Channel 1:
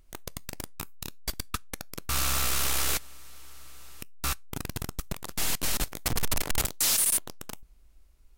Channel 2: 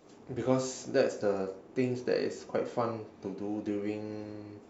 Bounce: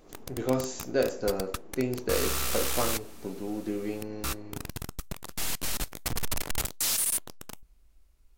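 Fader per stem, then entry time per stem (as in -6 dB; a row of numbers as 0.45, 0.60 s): -3.0, +1.0 dB; 0.00, 0.00 s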